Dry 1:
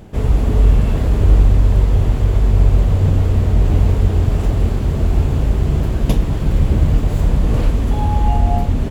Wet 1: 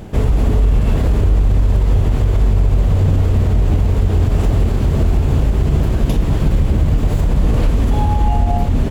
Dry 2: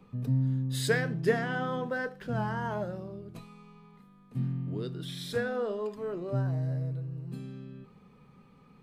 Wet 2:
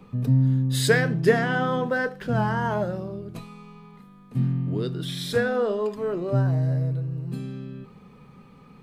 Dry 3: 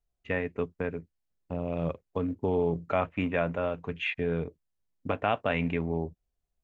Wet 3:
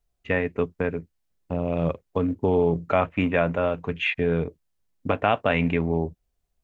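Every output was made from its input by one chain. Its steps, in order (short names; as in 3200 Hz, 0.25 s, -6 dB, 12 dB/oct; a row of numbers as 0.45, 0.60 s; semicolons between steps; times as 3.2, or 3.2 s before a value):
in parallel at +0.5 dB: compressor, threshold -20 dBFS; on the sum: limiter -6 dBFS; normalise peaks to -6 dBFS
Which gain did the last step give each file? 0.0, +1.5, 0.0 dB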